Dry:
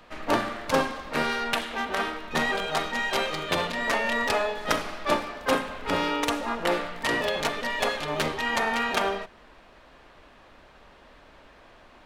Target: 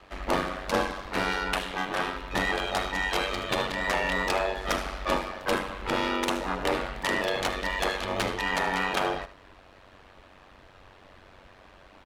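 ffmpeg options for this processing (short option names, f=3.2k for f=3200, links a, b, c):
-af "aeval=exprs='val(0)*sin(2*PI*47*n/s)':c=same,asoftclip=type=tanh:threshold=-18.5dB,aecho=1:1:76:0.188,volume=2.5dB"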